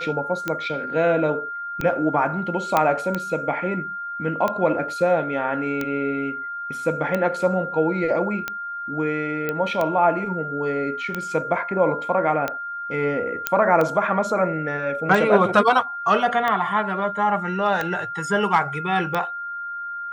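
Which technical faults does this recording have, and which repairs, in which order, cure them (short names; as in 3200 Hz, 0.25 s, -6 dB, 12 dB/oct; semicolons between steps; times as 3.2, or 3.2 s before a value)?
tick 45 rpm -11 dBFS
tone 1400 Hz -28 dBFS
2.77 pop -5 dBFS
9.49 pop -12 dBFS
13.47 pop -3 dBFS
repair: de-click; notch 1400 Hz, Q 30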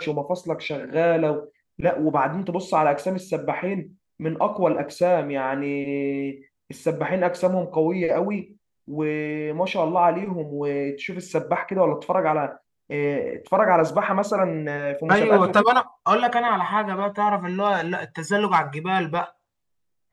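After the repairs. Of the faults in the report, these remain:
2.77 pop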